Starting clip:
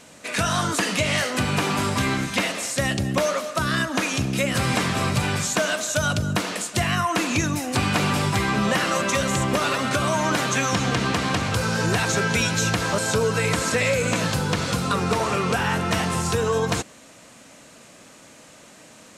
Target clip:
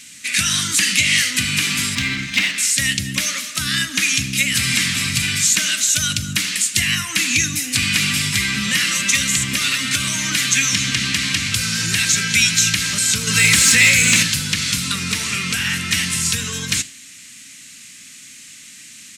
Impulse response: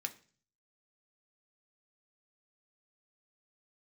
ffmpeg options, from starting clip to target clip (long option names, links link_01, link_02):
-filter_complex "[0:a]firequalizer=gain_entry='entry(260,0);entry(390,-14);entry(760,-20);entry(1200,-6);entry(2000,11);entry(7400,14)':delay=0.05:min_phase=1,asettb=1/sr,asplit=3[link_01][link_02][link_03];[link_01]atrim=end=13.274[link_04];[link_02]atrim=start=13.27:end=14.23,asetpts=PTS-STARTPTS,afade=type=in:duration=0.004:curve=qsin,afade=type=out:start_time=0.956:duration=0.004:curve=qsin,acontrast=57[link_05];[link_03]atrim=start=14.226[link_06];[link_04][link_05]acrossfade=duration=0.004:curve1=hsin:curve2=qsin[link_07];[link_07][link_06]acrossfade=duration=0.004:curve1=qsin:curve2=hsin,flanger=delay=9.1:depth=6.6:regen=-87:speed=1.3:shape=sinusoidal,asettb=1/sr,asplit=3[link_08][link_09][link_10];[link_08]atrim=end=1.954[link_11];[link_09]atrim=start=1.95:end=2.58,asetpts=PTS-STARTPTS,afade=type=in:duration=0.004:curve=qsin,afade=type=out:start_time=0.626:duration=0.004:curve=qsin,adynamicsmooth=sensitivity=1:basefreq=3400[link_12];[link_10]atrim=start=2.576[link_13];[link_11][link_12]acrossfade=duration=0.004:curve1=hsin:curve2=qsin[link_14];[link_14][link_13]acrossfade=duration=0.004:curve1=qsin:curve2=hsin,asplit=2[link_15][link_16];[link_16]aecho=0:1:77:0.075[link_17];[link_15][link_17]amix=inputs=2:normalize=0,volume=2.5dB"